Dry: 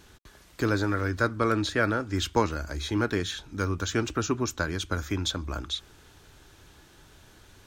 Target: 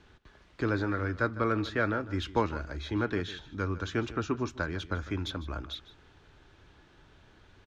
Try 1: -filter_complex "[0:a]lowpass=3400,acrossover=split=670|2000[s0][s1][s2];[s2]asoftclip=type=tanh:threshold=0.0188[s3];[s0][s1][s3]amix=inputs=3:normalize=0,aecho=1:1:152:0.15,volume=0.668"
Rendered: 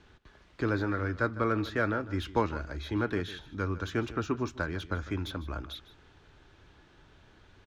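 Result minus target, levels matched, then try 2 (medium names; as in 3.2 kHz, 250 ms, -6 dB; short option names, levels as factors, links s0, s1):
saturation: distortion +11 dB
-filter_complex "[0:a]lowpass=3400,acrossover=split=670|2000[s0][s1][s2];[s2]asoftclip=type=tanh:threshold=0.0596[s3];[s0][s1][s3]amix=inputs=3:normalize=0,aecho=1:1:152:0.15,volume=0.668"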